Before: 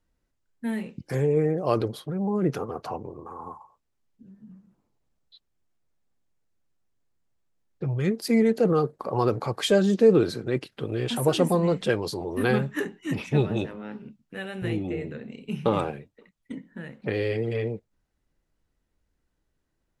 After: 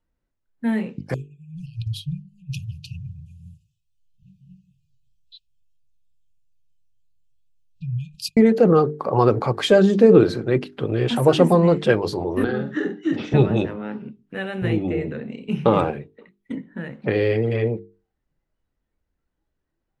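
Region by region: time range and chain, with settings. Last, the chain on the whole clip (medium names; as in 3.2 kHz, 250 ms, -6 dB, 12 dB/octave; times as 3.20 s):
1.14–8.37 s: compressor with a negative ratio -30 dBFS, ratio -0.5 + brick-wall FIR band-stop 170–2400 Hz
12.44–13.34 s: compression 12:1, threshold -28 dBFS + cabinet simulation 160–6400 Hz, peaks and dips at 320 Hz +8 dB, 1 kHz -9 dB, 1.5 kHz +4 dB, 2.4 kHz -10 dB, 3.6 kHz +4 dB + doubling 47 ms -6 dB
whole clip: spectral noise reduction 9 dB; low-pass 2.6 kHz 6 dB/octave; hum notches 50/100/150/200/250/300/350/400/450 Hz; trim +7.5 dB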